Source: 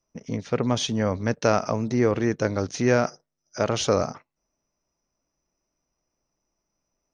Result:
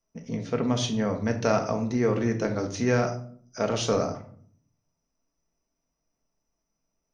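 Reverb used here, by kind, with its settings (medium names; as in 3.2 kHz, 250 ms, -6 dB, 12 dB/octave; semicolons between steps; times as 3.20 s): simulated room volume 640 m³, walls furnished, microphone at 1.6 m; trim -4.5 dB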